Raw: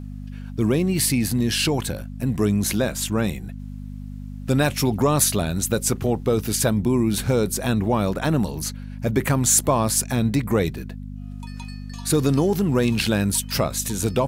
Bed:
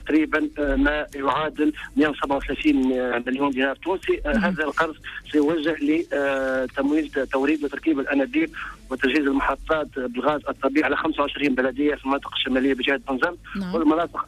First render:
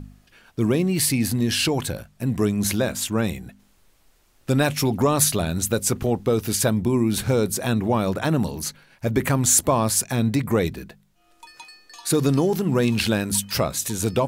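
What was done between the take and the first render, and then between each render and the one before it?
de-hum 50 Hz, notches 5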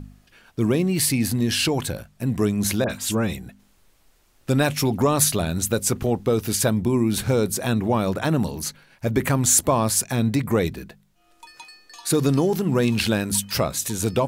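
2.84–3.37 s: phase dispersion highs, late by 56 ms, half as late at 2 kHz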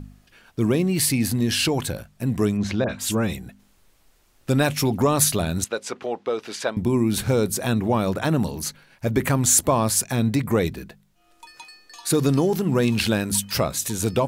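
2.57–2.99 s: distance through air 160 m; 5.64–6.77 s: band-pass 490–3900 Hz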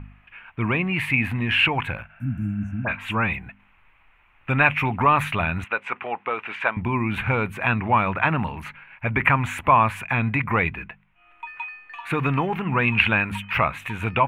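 FFT filter 100 Hz 0 dB, 380 Hz -8 dB, 570 Hz -5 dB, 940 Hz +9 dB, 1.7 kHz +8 dB, 2.5 kHz +14 dB, 4.9 kHz -29 dB, 14 kHz -23 dB; 2.12–2.83 s: spectral replace 310–5500 Hz before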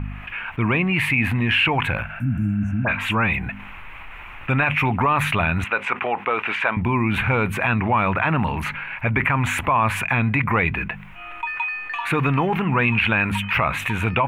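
peak limiter -10.5 dBFS, peak gain reduction 8.5 dB; level flattener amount 50%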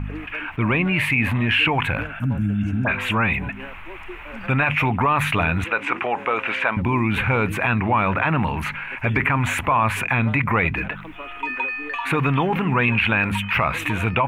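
add bed -16.5 dB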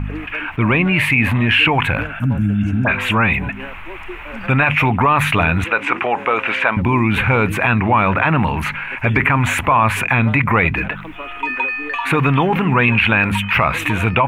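trim +5 dB

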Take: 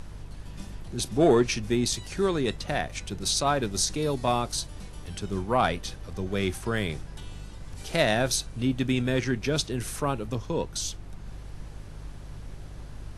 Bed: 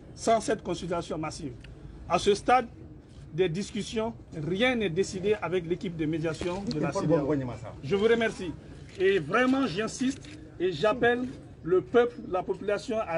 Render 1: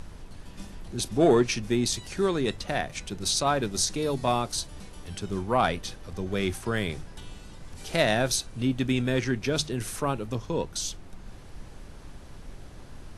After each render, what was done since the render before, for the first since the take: de-hum 50 Hz, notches 3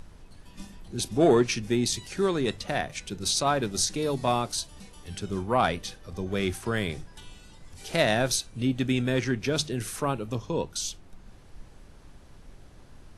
noise print and reduce 6 dB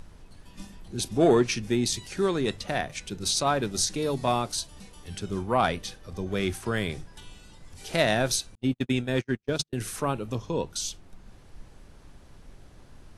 8.55–9.73 s: gate -27 dBFS, range -47 dB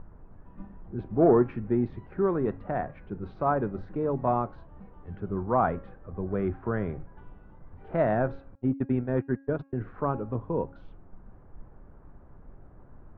inverse Chebyshev low-pass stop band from 7.6 kHz, stop band 80 dB; de-hum 273.6 Hz, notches 10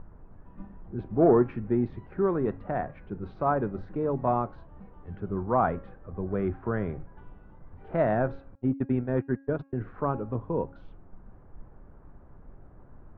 no audible change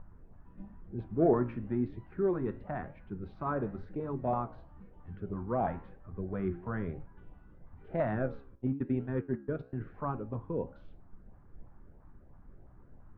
LFO notch saw up 3 Hz 330–1500 Hz; flange 0.99 Hz, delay 8.3 ms, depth 9.3 ms, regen +82%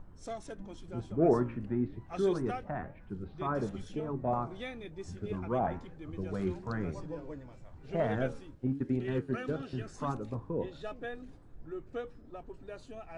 add bed -17 dB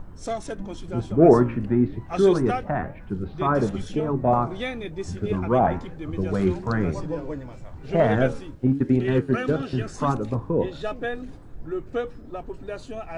trim +11.5 dB

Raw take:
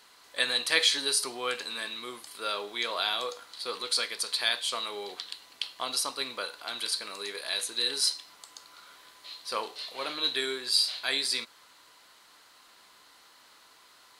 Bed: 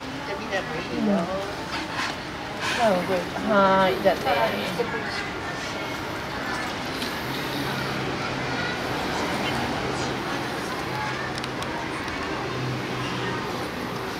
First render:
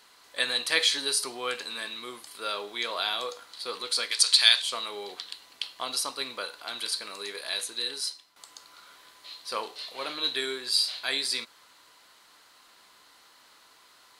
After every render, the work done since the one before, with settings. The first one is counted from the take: 4.11–4.62 s: frequency weighting ITU-R 468; 7.55–8.36 s: fade out, to -13.5 dB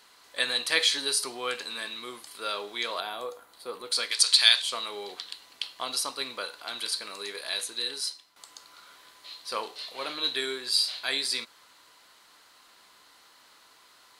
3.00–3.92 s: FFT filter 720 Hz 0 dB, 5 kHz -14 dB, 14 kHz +2 dB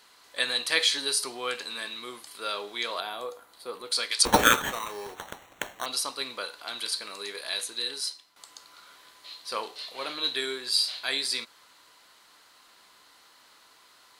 4.25–5.86 s: sample-rate reducer 4.9 kHz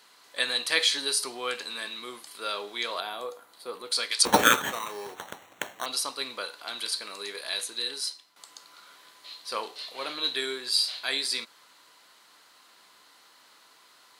high-pass 120 Hz 12 dB/octave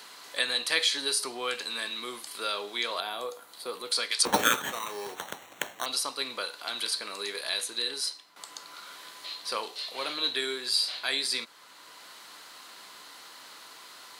three bands compressed up and down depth 40%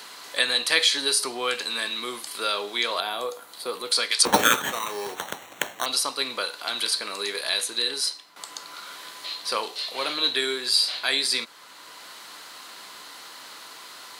trim +5.5 dB; peak limiter -3 dBFS, peak gain reduction 2 dB

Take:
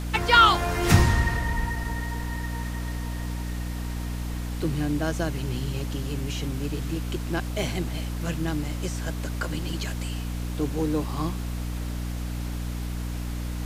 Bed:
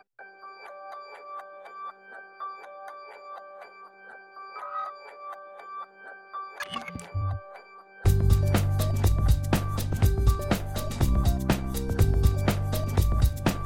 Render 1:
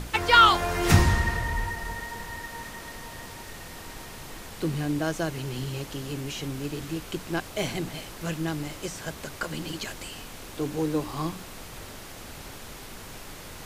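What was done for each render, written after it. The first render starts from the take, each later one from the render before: hum notches 60/120/180/240/300 Hz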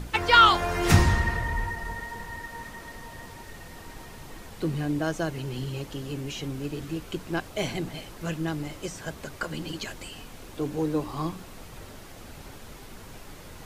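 noise reduction 6 dB, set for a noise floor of -42 dBFS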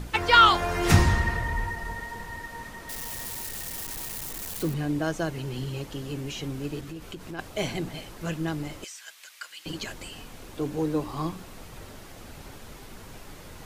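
2.89–4.74 s: zero-crossing glitches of -27 dBFS; 6.80–7.39 s: compression 4:1, threshold -35 dBFS; 8.84–9.66 s: Chebyshev high-pass 2.4 kHz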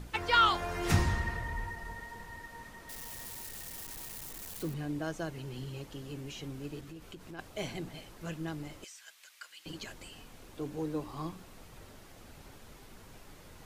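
trim -8.5 dB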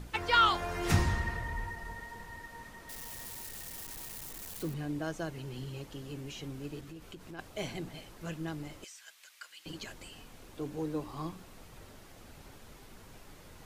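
no audible change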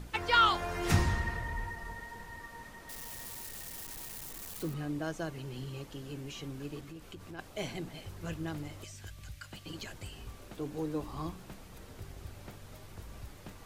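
add bed -25.5 dB

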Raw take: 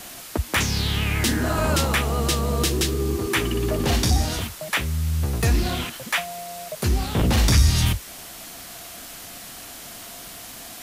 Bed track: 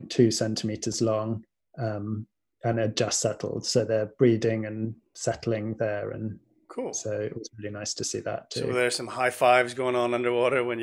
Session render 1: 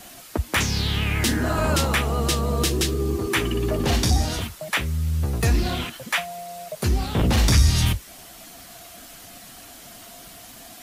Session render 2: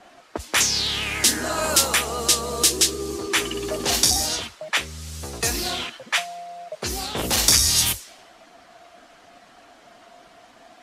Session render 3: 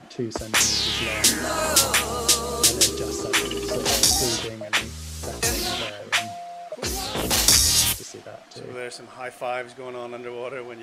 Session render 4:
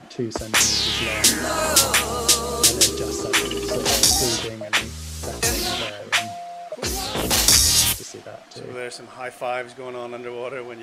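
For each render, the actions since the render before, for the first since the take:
noise reduction 6 dB, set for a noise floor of -40 dBFS
level-controlled noise filter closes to 1.4 kHz, open at -16 dBFS; tone controls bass -14 dB, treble +12 dB
add bed track -9 dB
trim +2 dB; peak limiter -1 dBFS, peak gain reduction 1 dB

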